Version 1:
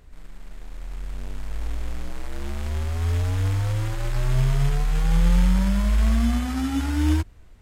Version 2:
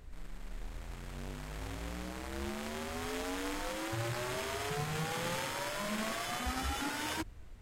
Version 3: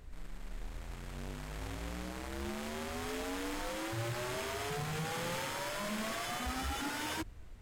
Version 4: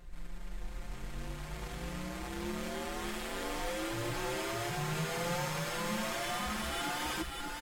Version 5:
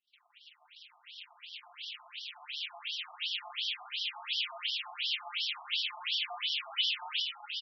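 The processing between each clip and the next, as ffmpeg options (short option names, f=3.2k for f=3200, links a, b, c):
-af "afftfilt=real='re*lt(hypot(re,im),0.316)':imag='im*lt(hypot(re,im),0.316)':win_size=1024:overlap=0.75,volume=-2dB"
-af "asoftclip=type=hard:threshold=-32.5dB"
-filter_complex "[0:a]aecho=1:1:5.7:0.9,asplit=2[a][b];[b]aecho=0:1:594:0.668[c];[a][c]amix=inputs=2:normalize=0,volume=-2dB"
-af "highshelf=f=2.2k:t=q:w=3:g=9.5,agate=range=-33dB:threshold=-34dB:ratio=3:detection=peak,afftfilt=real='re*between(b*sr/1024,900*pow(4200/900,0.5+0.5*sin(2*PI*2.8*pts/sr))/1.41,900*pow(4200/900,0.5+0.5*sin(2*PI*2.8*pts/sr))*1.41)':imag='im*between(b*sr/1024,900*pow(4200/900,0.5+0.5*sin(2*PI*2.8*pts/sr))/1.41,900*pow(4200/900,0.5+0.5*sin(2*PI*2.8*pts/sr))*1.41)':win_size=1024:overlap=0.75"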